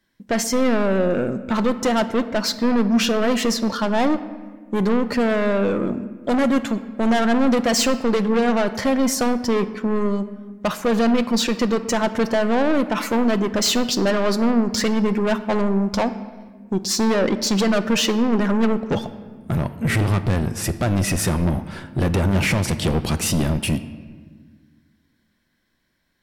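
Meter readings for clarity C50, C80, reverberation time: 13.0 dB, 14.5 dB, 1.5 s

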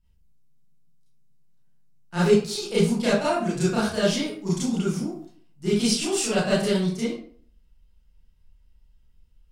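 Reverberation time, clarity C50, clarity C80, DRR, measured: 0.50 s, 1.0 dB, 6.5 dB, -11.0 dB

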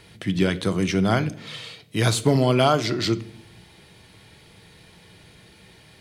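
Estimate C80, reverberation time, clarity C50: 22.5 dB, 0.65 s, 17.5 dB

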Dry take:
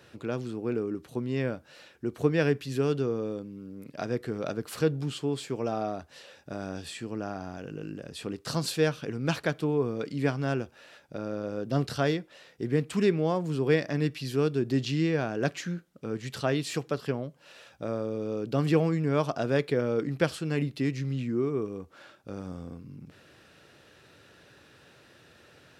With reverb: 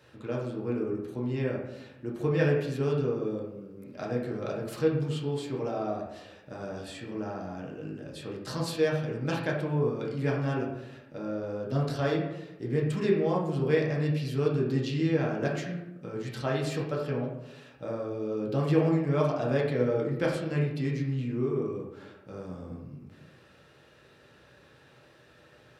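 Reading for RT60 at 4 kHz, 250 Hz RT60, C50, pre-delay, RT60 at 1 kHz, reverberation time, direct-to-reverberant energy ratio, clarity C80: 0.55 s, 1.2 s, 3.5 dB, 3 ms, 0.90 s, 0.95 s, -3.0 dB, 6.5 dB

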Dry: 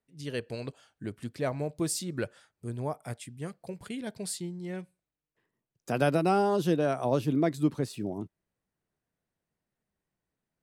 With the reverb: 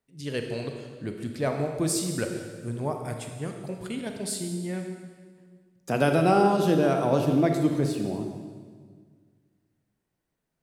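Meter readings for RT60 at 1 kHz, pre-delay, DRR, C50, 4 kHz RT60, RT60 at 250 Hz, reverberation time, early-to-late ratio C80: 1.6 s, 29 ms, 4.0 dB, 5.0 dB, 1.5 s, 2.2 s, 1.7 s, 6.5 dB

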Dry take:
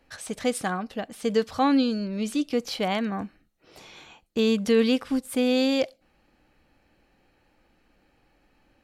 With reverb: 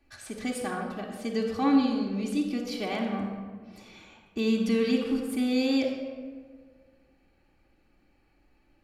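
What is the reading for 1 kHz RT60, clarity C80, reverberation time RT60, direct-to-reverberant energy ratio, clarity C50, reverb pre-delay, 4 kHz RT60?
1.4 s, 5.5 dB, 1.6 s, -4.0 dB, 3.5 dB, 3 ms, 0.90 s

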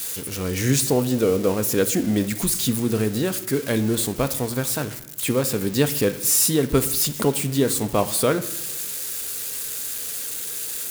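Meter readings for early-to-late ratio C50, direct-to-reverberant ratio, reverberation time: 14.0 dB, 10.0 dB, 0.95 s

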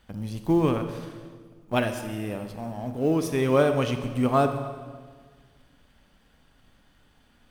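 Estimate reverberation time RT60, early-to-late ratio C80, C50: 1.6 s, 9.5 dB, 8.5 dB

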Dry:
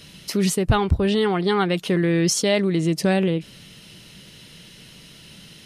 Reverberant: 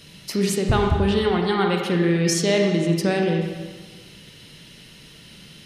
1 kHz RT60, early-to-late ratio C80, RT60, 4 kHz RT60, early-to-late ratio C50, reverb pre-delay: 1.4 s, 4.5 dB, 1.4 s, 1.2 s, 2.5 dB, 34 ms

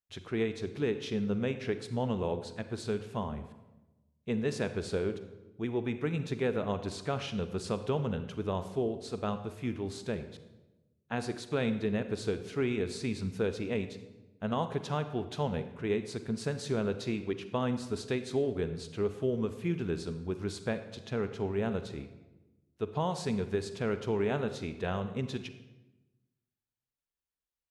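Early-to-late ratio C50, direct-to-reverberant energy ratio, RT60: 11.0 dB, 10.0 dB, 1.1 s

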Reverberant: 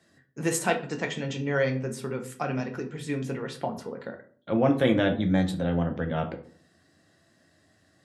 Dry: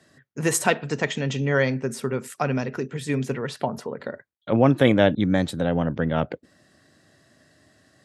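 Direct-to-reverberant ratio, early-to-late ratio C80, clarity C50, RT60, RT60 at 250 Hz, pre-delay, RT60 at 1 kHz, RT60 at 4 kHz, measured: 3.5 dB, 17.0 dB, 12.0 dB, 0.50 s, 0.65 s, 6 ms, 0.45 s, 0.30 s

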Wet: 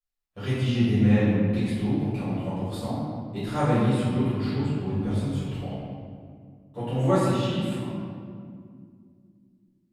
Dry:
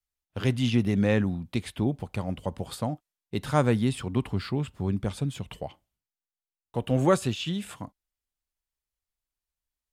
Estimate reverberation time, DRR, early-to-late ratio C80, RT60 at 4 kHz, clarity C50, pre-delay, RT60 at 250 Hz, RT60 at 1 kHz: 2.2 s, -15.5 dB, -0.5 dB, 1.2 s, -3.0 dB, 3 ms, 3.4 s, 1.9 s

